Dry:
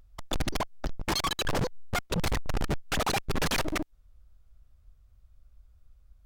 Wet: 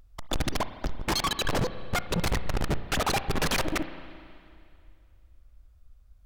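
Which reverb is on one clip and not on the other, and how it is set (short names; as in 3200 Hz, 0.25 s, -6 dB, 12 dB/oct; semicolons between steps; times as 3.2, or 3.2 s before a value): spring tank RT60 2.4 s, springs 34/53 ms, chirp 35 ms, DRR 11.5 dB; gain +1.5 dB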